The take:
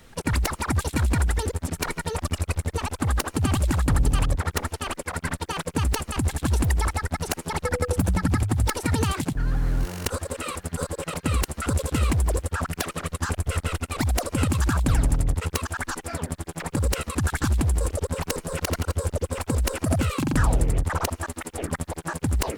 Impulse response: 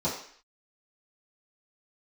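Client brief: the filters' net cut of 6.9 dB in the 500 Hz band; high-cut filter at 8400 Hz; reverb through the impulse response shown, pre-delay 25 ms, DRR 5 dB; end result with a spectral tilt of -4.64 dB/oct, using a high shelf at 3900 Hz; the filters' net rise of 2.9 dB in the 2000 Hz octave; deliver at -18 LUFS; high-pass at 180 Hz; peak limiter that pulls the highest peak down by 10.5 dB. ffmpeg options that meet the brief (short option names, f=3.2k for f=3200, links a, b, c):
-filter_complex "[0:a]highpass=180,lowpass=8.4k,equalizer=f=500:t=o:g=-8.5,equalizer=f=2k:t=o:g=6,highshelf=f=3.9k:g=-7.5,alimiter=limit=-20.5dB:level=0:latency=1,asplit=2[a][b];[1:a]atrim=start_sample=2205,adelay=25[c];[b][c]afir=irnorm=-1:irlink=0,volume=-14.5dB[d];[a][d]amix=inputs=2:normalize=0,volume=13dB"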